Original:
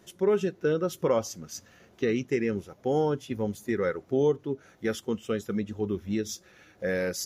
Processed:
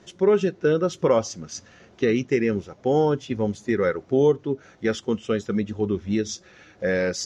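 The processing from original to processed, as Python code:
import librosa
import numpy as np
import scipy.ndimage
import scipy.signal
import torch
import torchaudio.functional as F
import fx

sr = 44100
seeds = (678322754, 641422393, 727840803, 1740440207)

y = scipy.signal.sosfilt(scipy.signal.butter(4, 6800.0, 'lowpass', fs=sr, output='sos'), x)
y = y * librosa.db_to_amplitude(5.5)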